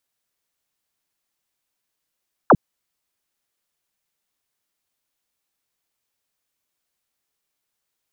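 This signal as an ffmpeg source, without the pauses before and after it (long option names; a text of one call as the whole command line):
ffmpeg -f lavfi -i "aevalsrc='0.422*clip(t/0.002,0,1)*clip((0.05-t)/0.002,0,1)*sin(2*PI*1600*0.05/log(120/1600)*(exp(log(120/1600)*t/0.05)-1))':duration=0.05:sample_rate=44100" out.wav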